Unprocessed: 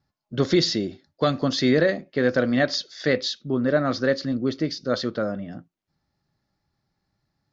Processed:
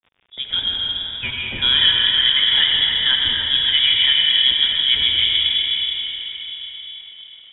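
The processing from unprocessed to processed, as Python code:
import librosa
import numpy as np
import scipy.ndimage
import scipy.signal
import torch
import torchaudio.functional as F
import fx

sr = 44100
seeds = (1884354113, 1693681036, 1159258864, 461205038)

y = fx.fade_in_head(x, sr, length_s=1.61)
y = fx.highpass(y, sr, hz=890.0, slope=24, at=(0.76, 1.58))
y = fx.rider(y, sr, range_db=3, speed_s=2.0)
y = fx.rev_freeverb(y, sr, rt60_s=4.5, hf_ratio=0.75, predelay_ms=45, drr_db=-1.5)
y = fx.dmg_crackle(y, sr, seeds[0], per_s=120.0, level_db=-42.0)
y = fx.echo_alternate(y, sr, ms=146, hz=1400.0, feedback_pct=65, wet_db=-4.5)
y = fx.freq_invert(y, sr, carrier_hz=3600)
y = y * 10.0 ** (2.0 / 20.0)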